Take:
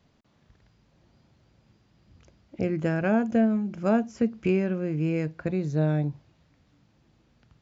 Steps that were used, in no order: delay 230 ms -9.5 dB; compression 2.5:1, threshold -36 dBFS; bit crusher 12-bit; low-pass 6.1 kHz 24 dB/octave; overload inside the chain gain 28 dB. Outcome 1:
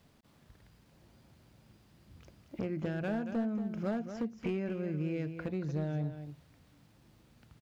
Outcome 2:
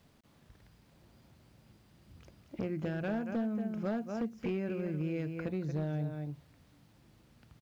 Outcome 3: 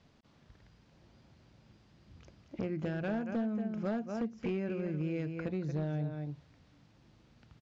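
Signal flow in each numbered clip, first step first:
low-pass > bit crusher > compression > overload inside the chain > delay; delay > compression > overload inside the chain > low-pass > bit crusher; bit crusher > delay > compression > overload inside the chain > low-pass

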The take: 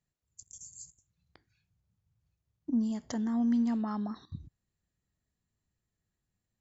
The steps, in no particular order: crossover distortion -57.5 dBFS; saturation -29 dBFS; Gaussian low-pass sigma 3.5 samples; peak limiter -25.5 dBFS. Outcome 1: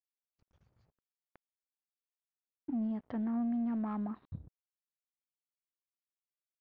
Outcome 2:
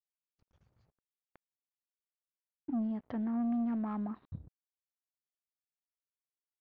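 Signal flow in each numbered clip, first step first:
peak limiter > crossover distortion > Gaussian low-pass > saturation; crossover distortion > Gaussian low-pass > saturation > peak limiter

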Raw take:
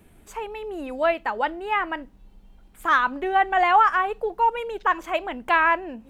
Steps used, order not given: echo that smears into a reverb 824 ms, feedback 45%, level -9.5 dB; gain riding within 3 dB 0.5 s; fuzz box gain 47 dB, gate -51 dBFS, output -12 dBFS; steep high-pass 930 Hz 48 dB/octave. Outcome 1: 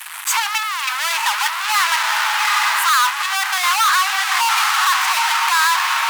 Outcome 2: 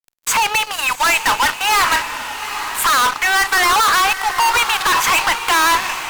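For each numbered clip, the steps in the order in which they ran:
echo that smears into a reverb > gain riding > fuzz box > steep high-pass; gain riding > steep high-pass > fuzz box > echo that smears into a reverb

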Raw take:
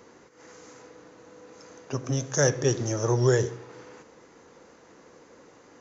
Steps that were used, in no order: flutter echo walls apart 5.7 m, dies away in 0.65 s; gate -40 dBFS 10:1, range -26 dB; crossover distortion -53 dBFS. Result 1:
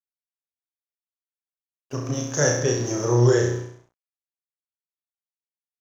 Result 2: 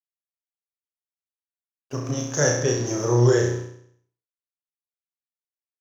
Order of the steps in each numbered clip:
gate > flutter echo > crossover distortion; gate > crossover distortion > flutter echo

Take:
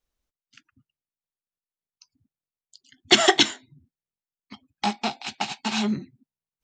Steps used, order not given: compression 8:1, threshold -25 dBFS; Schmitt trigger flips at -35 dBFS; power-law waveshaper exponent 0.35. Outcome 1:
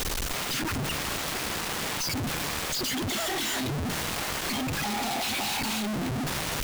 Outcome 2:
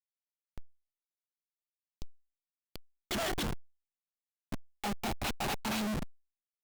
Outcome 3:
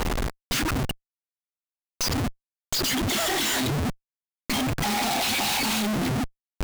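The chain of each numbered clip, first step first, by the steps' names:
power-law waveshaper > compression > Schmitt trigger; compression > Schmitt trigger > power-law waveshaper; compression > power-law waveshaper > Schmitt trigger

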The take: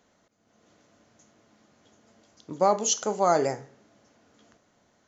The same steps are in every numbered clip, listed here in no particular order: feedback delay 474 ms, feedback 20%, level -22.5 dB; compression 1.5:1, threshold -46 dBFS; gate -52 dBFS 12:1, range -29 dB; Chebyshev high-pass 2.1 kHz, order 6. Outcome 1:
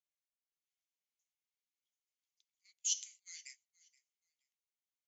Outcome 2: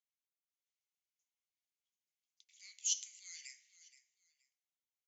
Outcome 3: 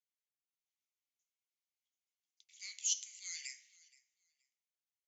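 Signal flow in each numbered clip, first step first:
compression > Chebyshev high-pass > gate > feedback delay; gate > feedback delay > compression > Chebyshev high-pass; gate > Chebyshev high-pass > compression > feedback delay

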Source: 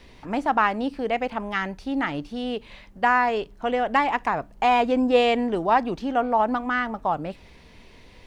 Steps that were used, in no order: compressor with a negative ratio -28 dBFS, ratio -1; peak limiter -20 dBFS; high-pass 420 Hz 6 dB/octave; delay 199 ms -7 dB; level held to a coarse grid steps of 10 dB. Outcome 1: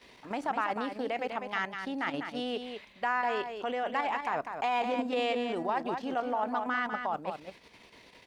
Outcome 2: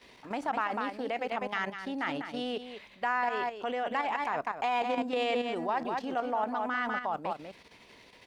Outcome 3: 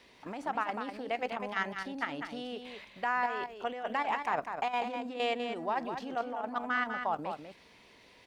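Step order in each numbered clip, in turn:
level held to a coarse grid > high-pass > peak limiter > delay > compressor with a negative ratio; delay > level held to a coarse grid > high-pass > peak limiter > compressor with a negative ratio; peak limiter > compressor with a negative ratio > high-pass > level held to a coarse grid > delay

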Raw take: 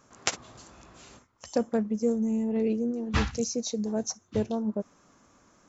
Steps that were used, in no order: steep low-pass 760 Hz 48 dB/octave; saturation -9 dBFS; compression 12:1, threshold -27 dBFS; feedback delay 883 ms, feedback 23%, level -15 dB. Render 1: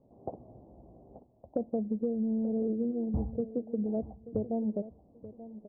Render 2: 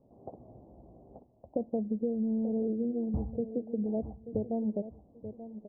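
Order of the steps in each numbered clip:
saturation > steep low-pass > compression > feedback delay; feedback delay > compression > saturation > steep low-pass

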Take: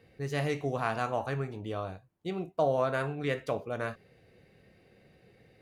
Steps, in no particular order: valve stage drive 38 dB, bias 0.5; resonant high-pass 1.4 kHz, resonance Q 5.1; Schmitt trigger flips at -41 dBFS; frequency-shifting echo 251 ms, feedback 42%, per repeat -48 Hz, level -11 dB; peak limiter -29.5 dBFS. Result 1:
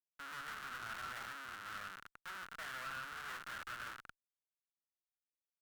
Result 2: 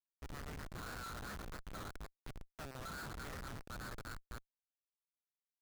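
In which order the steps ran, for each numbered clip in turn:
peak limiter > frequency-shifting echo > Schmitt trigger > resonant high-pass > valve stage; frequency-shifting echo > peak limiter > valve stage > resonant high-pass > Schmitt trigger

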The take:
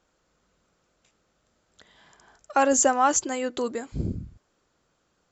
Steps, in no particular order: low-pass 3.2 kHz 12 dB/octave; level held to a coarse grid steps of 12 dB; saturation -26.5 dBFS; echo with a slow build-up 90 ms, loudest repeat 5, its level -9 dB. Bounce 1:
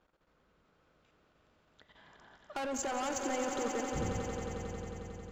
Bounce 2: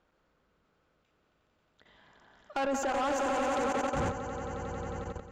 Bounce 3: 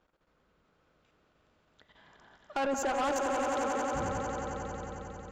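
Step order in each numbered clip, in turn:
low-pass > saturation > level held to a coarse grid > echo with a slow build-up; echo with a slow build-up > level held to a coarse grid > low-pass > saturation; low-pass > level held to a coarse grid > echo with a slow build-up > saturation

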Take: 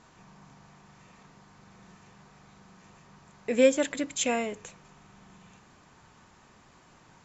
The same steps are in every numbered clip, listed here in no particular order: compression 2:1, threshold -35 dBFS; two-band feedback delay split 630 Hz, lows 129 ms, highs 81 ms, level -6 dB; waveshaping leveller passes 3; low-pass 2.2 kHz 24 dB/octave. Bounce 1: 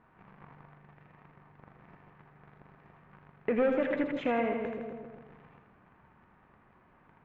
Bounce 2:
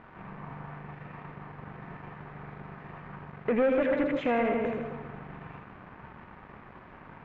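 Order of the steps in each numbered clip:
waveshaping leveller > two-band feedback delay > compression > low-pass; two-band feedback delay > compression > waveshaping leveller > low-pass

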